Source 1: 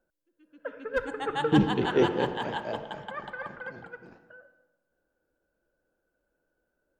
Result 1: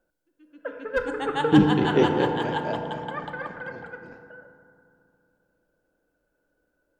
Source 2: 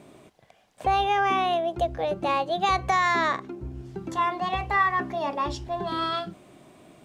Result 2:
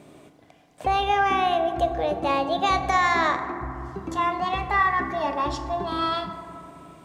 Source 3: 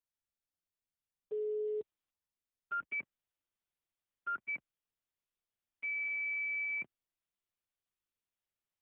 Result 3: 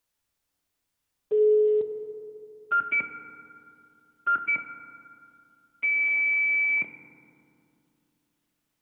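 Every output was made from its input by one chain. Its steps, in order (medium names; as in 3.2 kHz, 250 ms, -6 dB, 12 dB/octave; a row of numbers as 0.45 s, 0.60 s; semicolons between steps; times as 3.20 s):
FDN reverb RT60 2.7 s, low-frequency decay 1.3×, high-frequency decay 0.3×, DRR 6.5 dB; normalise loudness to -24 LUFS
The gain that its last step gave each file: +3.0 dB, +1.0 dB, +13.0 dB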